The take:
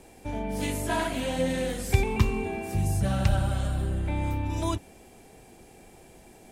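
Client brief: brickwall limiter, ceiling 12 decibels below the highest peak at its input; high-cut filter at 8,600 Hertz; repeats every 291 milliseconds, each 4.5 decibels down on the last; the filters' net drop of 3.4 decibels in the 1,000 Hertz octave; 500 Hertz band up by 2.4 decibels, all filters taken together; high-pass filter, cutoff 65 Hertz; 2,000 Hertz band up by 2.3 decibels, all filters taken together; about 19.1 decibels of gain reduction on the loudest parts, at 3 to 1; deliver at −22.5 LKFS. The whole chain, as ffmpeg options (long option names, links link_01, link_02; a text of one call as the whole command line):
ffmpeg -i in.wav -af "highpass=65,lowpass=8600,equalizer=frequency=500:width_type=o:gain=4.5,equalizer=frequency=1000:width_type=o:gain=-7,equalizer=frequency=2000:width_type=o:gain=4.5,acompressor=threshold=-45dB:ratio=3,alimiter=level_in=15.5dB:limit=-24dB:level=0:latency=1,volume=-15.5dB,aecho=1:1:291|582|873|1164|1455|1746|2037|2328|2619:0.596|0.357|0.214|0.129|0.0772|0.0463|0.0278|0.0167|0.01,volume=24dB" out.wav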